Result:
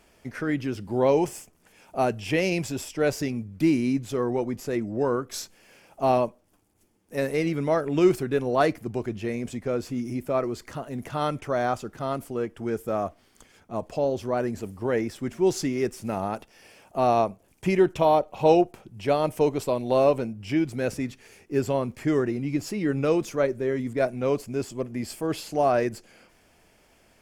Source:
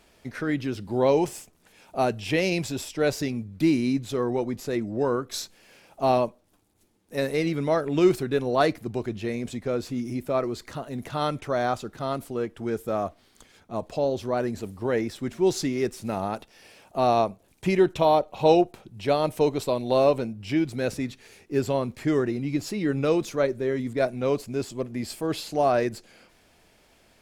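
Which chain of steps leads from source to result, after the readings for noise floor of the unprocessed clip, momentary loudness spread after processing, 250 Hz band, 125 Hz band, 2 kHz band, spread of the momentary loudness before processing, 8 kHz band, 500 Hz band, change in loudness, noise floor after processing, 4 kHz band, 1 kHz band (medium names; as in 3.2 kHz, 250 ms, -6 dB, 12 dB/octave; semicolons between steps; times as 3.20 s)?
-61 dBFS, 11 LU, 0.0 dB, 0.0 dB, 0.0 dB, 10 LU, -0.5 dB, 0.0 dB, 0.0 dB, -61 dBFS, -3.5 dB, 0.0 dB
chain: peaking EQ 3.9 kHz -8.5 dB 0.3 oct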